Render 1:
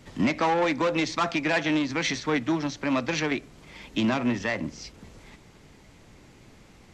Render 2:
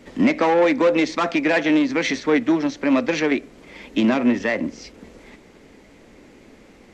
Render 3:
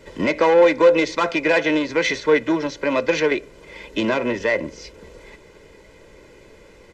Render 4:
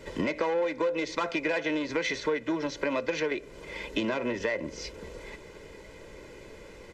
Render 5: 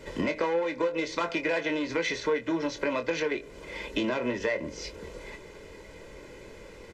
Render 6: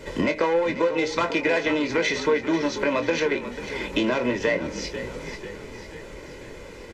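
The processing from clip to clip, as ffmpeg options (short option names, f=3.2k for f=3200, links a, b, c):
-af "equalizer=f=125:t=o:w=1:g=-7,equalizer=f=250:t=o:w=1:g=8,equalizer=f=500:t=o:w=1:g=8,equalizer=f=2k:t=o:w=1:g=5"
-af "aecho=1:1:2:0.69"
-af "acompressor=threshold=-27dB:ratio=5"
-filter_complex "[0:a]asplit=2[a][b];[b]adelay=24,volume=-8.5dB[c];[a][c]amix=inputs=2:normalize=0"
-filter_complex "[0:a]asplit=7[a][b][c][d][e][f][g];[b]adelay=491,afreqshift=-43,volume=-12dB[h];[c]adelay=982,afreqshift=-86,volume=-17.2dB[i];[d]adelay=1473,afreqshift=-129,volume=-22.4dB[j];[e]adelay=1964,afreqshift=-172,volume=-27.6dB[k];[f]adelay=2455,afreqshift=-215,volume=-32.8dB[l];[g]adelay=2946,afreqshift=-258,volume=-38dB[m];[a][h][i][j][k][l][m]amix=inputs=7:normalize=0,volume=5.5dB"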